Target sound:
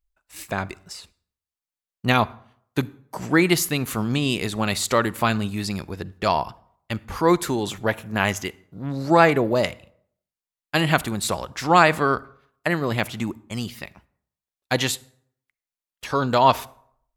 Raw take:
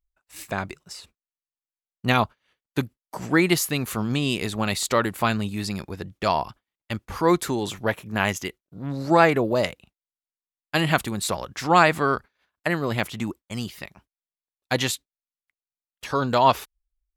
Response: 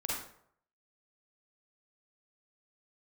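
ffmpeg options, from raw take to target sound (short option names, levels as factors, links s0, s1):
-filter_complex "[0:a]asplit=2[s0][s1];[1:a]atrim=start_sample=2205,lowshelf=f=120:g=12[s2];[s1][s2]afir=irnorm=-1:irlink=0,volume=0.0668[s3];[s0][s3]amix=inputs=2:normalize=0,volume=1.12"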